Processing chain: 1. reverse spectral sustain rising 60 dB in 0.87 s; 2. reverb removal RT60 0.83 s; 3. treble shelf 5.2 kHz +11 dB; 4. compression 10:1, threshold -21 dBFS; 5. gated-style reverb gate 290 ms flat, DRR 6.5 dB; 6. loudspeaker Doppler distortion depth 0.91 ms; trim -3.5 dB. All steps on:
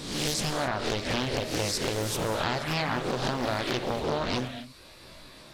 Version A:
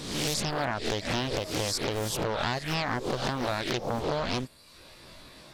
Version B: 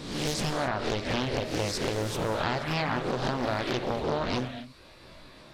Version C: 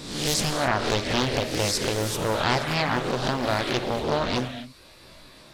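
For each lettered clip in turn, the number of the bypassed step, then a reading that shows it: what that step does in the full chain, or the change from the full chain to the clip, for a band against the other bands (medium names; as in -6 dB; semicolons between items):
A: 5, momentary loudness spread change -4 LU; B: 3, 8 kHz band -5.0 dB; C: 4, mean gain reduction 3.0 dB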